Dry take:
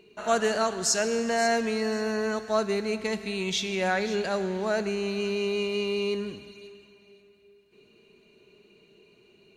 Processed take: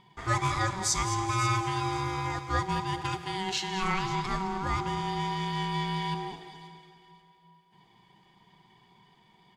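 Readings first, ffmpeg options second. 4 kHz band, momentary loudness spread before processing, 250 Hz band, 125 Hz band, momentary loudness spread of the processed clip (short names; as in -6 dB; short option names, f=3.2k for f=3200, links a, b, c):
-2.0 dB, 6 LU, -4.5 dB, +9.0 dB, 6 LU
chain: -af "aeval=exprs='val(0)*sin(2*PI*570*n/s)':c=same,aecho=1:1:213|426|639|852:0.251|0.111|0.0486|0.0214"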